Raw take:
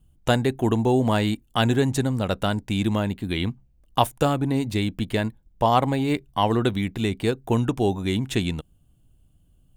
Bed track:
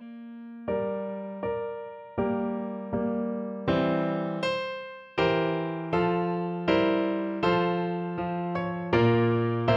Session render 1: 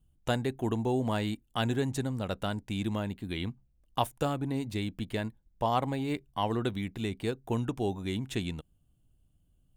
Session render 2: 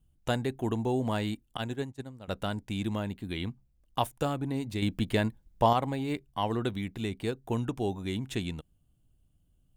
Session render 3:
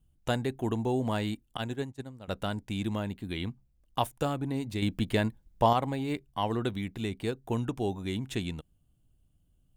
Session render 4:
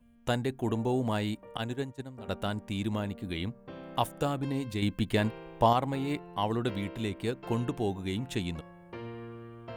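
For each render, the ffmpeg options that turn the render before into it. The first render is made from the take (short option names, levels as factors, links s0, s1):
-af "volume=0.355"
-filter_complex "[0:a]asettb=1/sr,asplit=3[s0][s1][s2];[s0]atrim=end=1.574[s3];[s1]atrim=start=1.57:end=2.28,asetpts=PTS-STARTPTS,afade=t=in:d=0.004:c=qsin,afade=t=out:st=0.706:d=0.004:c=qsin,agate=range=0.0224:threshold=0.0631:ratio=3:release=100:detection=peak[s4];[s2]atrim=start=2.276[s5];[s3][s4]acrossfade=d=0.004:c1=hsin:c2=qsin[s6];[s6][s5]acrossfade=d=0.004:c1=qsin:c2=hsin,asettb=1/sr,asplit=3[s7][s8][s9];[s7]atrim=end=4.824[s10];[s8]atrim=start=4.82:end=5.73,asetpts=PTS-STARTPTS,afade=t=in:d=0.004:c=qsin,afade=t=out:st=0.906:d=0.004:c=qsin,acontrast=53[s11];[s9]atrim=start=5.726[s12];[s10][s11]acrossfade=d=0.004:c1=hsin:c2=qsin[s13];[s13][s12]acrossfade=d=0.004:c1=qsin:c2=hsin"
-af anull
-filter_complex "[1:a]volume=0.1[s0];[0:a][s0]amix=inputs=2:normalize=0"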